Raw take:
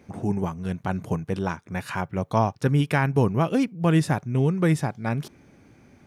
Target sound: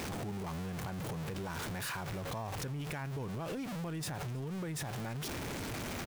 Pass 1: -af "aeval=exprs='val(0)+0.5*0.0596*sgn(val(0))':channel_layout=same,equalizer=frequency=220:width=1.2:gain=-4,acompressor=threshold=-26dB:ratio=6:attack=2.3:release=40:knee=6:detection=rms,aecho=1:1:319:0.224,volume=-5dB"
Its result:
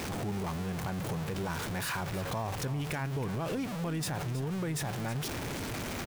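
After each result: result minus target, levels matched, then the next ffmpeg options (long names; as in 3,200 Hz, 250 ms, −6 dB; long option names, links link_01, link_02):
echo-to-direct +10.5 dB; downward compressor: peak gain reduction −5.5 dB
-af "aeval=exprs='val(0)+0.5*0.0596*sgn(val(0))':channel_layout=same,equalizer=frequency=220:width=1.2:gain=-4,acompressor=threshold=-26dB:ratio=6:attack=2.3:release=40:knee=6:detection=rms,aecho=1:1:319:0.0668,volume=-5dB"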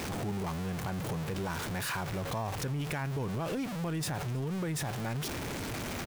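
downward compressor: peak gain reduction −5.5 dB
-af "aeval=exprs='val(0)+0.5*0.0596*sgn(val(0))':channel_layout=same,equalizer=frequency=220:width=1.2:gain=-4,acompressor=threshold=-32.5dB:ratio=6:attack=2.3:release=40:knee=6:detection=rms,aecho=1:1:319:0.0668,volume=-5dB"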